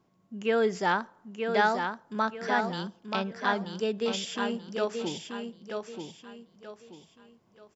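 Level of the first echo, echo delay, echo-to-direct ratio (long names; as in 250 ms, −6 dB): −5.5 dB, 932 ms, −5.0 dB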